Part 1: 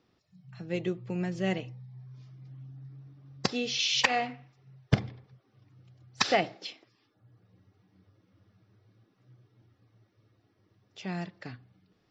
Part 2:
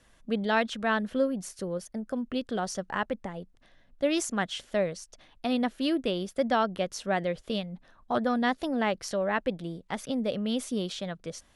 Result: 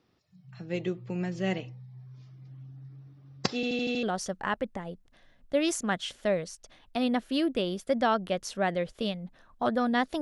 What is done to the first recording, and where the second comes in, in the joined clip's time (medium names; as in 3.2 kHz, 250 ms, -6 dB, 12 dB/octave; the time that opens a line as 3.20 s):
part 1
3.55 s: stutter in place 0.08 s, 6 plays
4.03 s: go over to part 2 from 2.52 s